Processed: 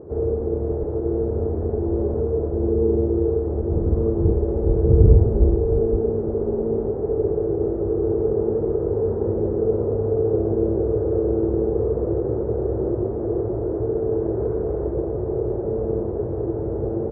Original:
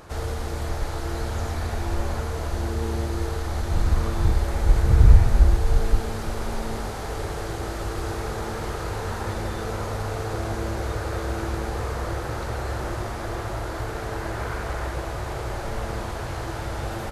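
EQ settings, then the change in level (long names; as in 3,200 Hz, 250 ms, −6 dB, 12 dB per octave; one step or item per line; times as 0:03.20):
high-pass filter 67 Hz
low-pass with resonance 420 Hz, resonance Q 4.9
high-frequency loss of the air 490 metres
+4.0 dB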